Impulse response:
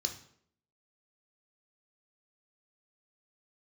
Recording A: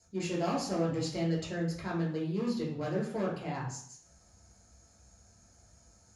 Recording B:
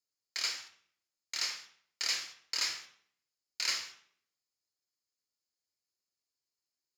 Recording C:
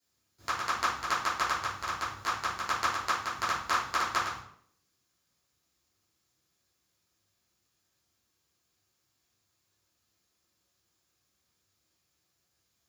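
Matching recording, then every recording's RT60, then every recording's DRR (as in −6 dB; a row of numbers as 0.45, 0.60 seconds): B; 0.65, 0.65, 0.65 seconds; −5.5, 4.0, −12.0 decibels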